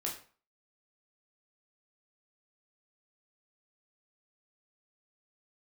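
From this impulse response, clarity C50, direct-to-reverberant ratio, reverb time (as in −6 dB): 8.0 dB, −2.5 dB, 0.40 s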